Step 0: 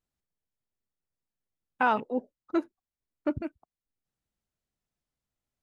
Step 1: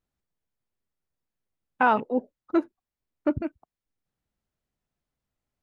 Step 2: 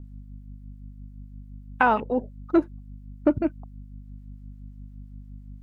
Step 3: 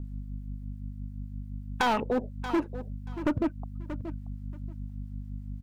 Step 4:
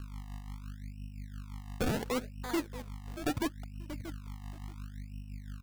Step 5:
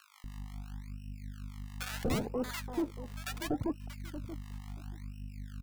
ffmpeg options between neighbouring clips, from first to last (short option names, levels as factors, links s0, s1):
-af "highshelf=f=3500:g=-8.5,volume=1.68"
-filter_complex "[0:a]acompressor=threshold=0.0562:ratio=2,aeval=exprs='val(0)+0.00501*(sin(2*PI*50*n/s)+sin(2*PI*2*50*n/s)/2+sin(2*PI*3*50*n/s)/3+sin(2*PI*4*50*n/s)/4+sin(2*PI*5*50*n/s)/5)':c=same,acrossover=split=880[s0][s1];[s0]aeval=exprs='val(0)*(1-0.5/2+0.5/2*cos(2*PI*5.8*n/s))':c=same[s2];[s1]aeval=exprs='val(0)*(1-0.5/2-0.5/2*cos(2*PI*5.8*n/s))':c=same[s3];[s2][s3]amix=inputs=2:normalize=0,volume=2.51"
-af "volume=11.9,asoftclip=hard,volume=0.0841,aecho=1:1:631|1262:0.15|0.0254,acompressor=threshold=0.0251:ratio=2,volume=1.68"
-af "acrusher=samples=31:mix=1:aa=0.000001:lfo=1:lforange=31:lforate=0.72,volume=0.531"
-filter_complex "[0:a]acrossover=split=990[s0][s1];[s0]adelay=240[s2];[s2][s1]amix=inputs=2:normalize=0"